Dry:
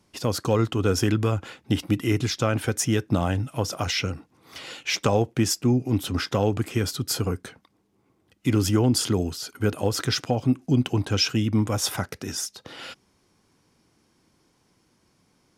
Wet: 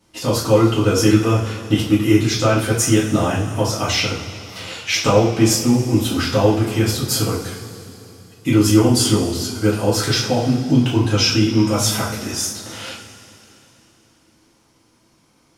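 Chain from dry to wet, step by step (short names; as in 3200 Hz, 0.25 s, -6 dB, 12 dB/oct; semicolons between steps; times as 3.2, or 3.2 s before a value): two-slope reverb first 0.41 s, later 3.3 s, from -18 dB, DRR -8 dB; gain -1 dB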